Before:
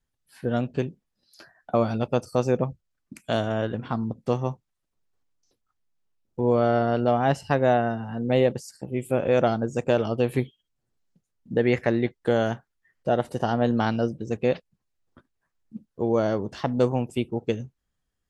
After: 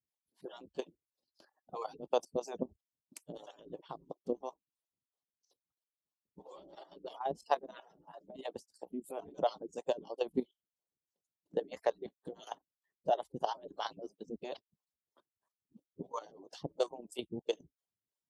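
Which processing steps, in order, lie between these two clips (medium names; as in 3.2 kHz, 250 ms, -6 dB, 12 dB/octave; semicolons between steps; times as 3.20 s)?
harmonic-percussive separation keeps percussive; high-pass 160 Hz 6 dB/octave; high-order bell 1.8 kHz -12 dB 1.2 oct; level held to a coarse grid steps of 12 dB; harmonic tremolo 3 Hz, depth 100%, crossover 430 Hz; trim +1 dB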